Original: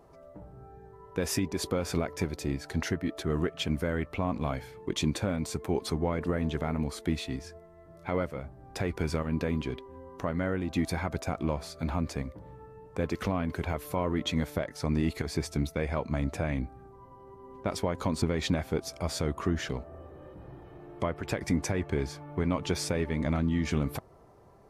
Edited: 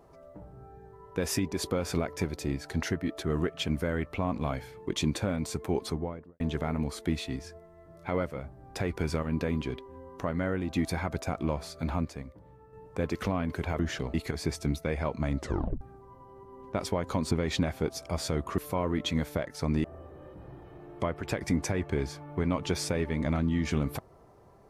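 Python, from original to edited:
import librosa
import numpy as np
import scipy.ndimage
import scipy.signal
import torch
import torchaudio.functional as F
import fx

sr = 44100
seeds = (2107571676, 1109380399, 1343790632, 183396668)

y = fx.studio_fade_out(x, sr, start_s=5.76, length_s=0.64)
y = fx.edit(y, sr, fx.clip_gain(start_s=12.05, length_s=0.68, db=-6.5),
    fx.swap(start_s=13.79, length_s=1.26, other_s=19.49, other_length_s=0.35),
    fx.tape_stop(start_s=16.29, length_s=0.43), tone=tone)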